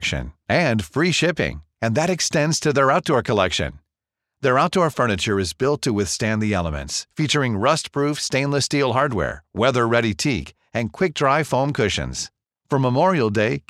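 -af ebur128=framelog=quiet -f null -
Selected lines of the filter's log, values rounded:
Integrated loudness:
  I:         -20.5 LUFS
  Threshold: -30.5 LUFS
Loudness range:
  LRA:         1.5 LU
  Threshold: -40.7 LUFS
  LRA low:   -21.3 LUFS
  LRA high:  -19.8 LUFS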